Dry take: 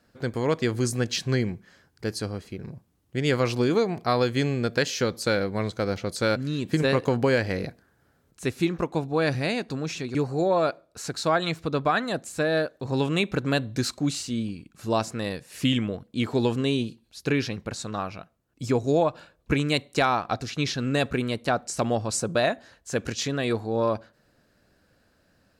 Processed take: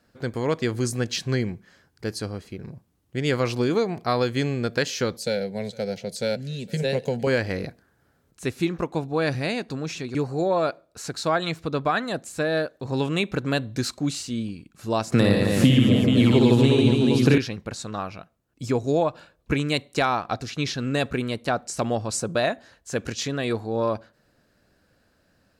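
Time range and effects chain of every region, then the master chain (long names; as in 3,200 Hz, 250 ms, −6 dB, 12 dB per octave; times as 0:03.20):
0:05.17–0:07.27: de-essing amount 55% + phaser with its sweep stopped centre 310 Hz, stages 6 + single-tap delay 459 ms −24 dB
0:15.12–0:17.38: low-shelf EQ 450 Hz +6.5 dB + reverse bouncing-ball delay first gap 60 ms, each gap 1.4×, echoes 6, each echo −2 dB + multiband upward and downward compressor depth 100%
whole clip: no processing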